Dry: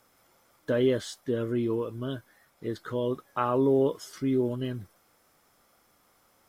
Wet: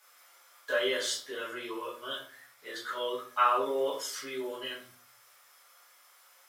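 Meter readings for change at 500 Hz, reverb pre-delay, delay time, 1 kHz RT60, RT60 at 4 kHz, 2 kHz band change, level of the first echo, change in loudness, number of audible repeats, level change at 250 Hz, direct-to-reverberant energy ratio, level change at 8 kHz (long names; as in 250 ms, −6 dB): −6.0 dB, 5 ms, no echo audible, 0.45 s, 0.35 s, +7.5 dB, no echo audible, −3.5 dB, no echo audible, −15.0 dB, −8.5 dB, +8.0 dB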